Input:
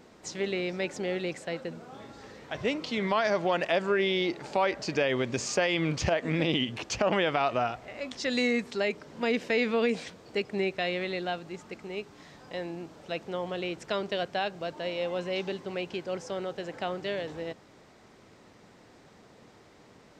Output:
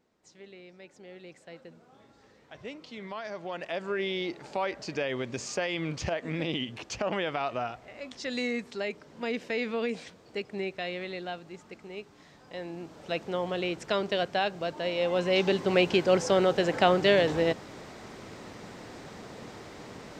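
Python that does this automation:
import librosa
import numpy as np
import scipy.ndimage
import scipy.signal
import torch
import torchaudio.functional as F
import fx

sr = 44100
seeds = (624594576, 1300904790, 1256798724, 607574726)

y = fx.gain(x, sr, db=fx.line((0.89, -18.5), (1.58, -12.0), (3.33, -12.0), (4.01, -4.5), (12.46, -4.5), (13.09, 2.5), (14.91, 2.5), (15.77, 11.0)))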